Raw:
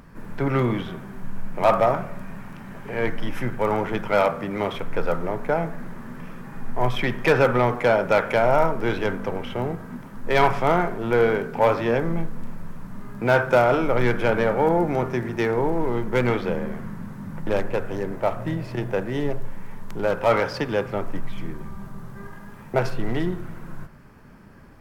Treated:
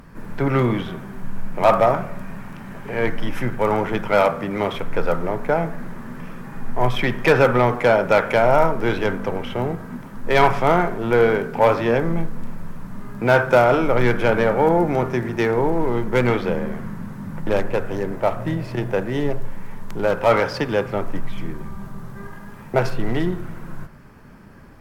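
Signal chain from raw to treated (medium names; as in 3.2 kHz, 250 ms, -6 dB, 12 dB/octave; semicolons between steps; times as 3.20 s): trim +3.5 dB; MP3 112 kbps 48 kHz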